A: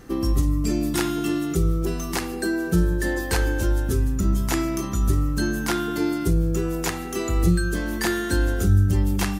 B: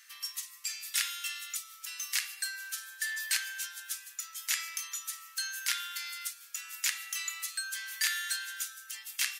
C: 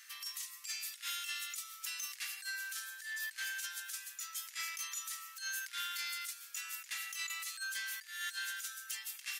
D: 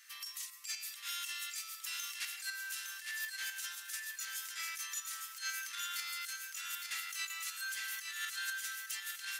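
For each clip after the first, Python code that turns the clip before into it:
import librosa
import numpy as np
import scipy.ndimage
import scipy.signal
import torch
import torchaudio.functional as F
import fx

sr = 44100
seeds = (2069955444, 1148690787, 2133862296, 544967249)

y1 = scipy.signal.sosfilt(scipy.signal.cheby2(4, 70, 420.0, 'highpass', fs=sr, output='sos'), x)
y2 = fx.over_compress(y1, sr, threshold_db=-38.0, ratio=-0.5)
y2 = 10.0 ** (-27.0 / 20.0) * np.tanh(y2 / 10.0 ** (-27.0 / 20.0))
y2 = y2 * 10.0 ** (-2.0 / 20.0)
y3 = fx.tremolo_shape(y2, sr, shape='saw_up', hz=4.0, depth_pct=50)
y3 = fx.echo_feedback(y3, sr, ms=861, feedback_pct=37, wet_db=-5.0)
y3 = y3 * 10.0 ** (1.5 / 20.0)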